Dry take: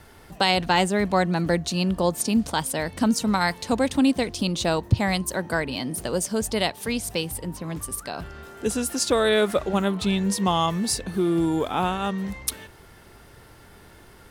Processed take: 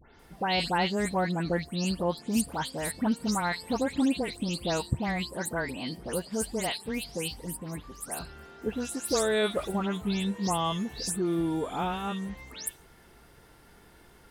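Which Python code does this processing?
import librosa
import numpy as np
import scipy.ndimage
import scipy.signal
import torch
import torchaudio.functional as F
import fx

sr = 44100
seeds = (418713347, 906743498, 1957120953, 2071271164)

y = fx.spec_delay(x, sr, highs='late', ms=194)
y = F.gain(torch.from_numpy(y), -6.0).numpy()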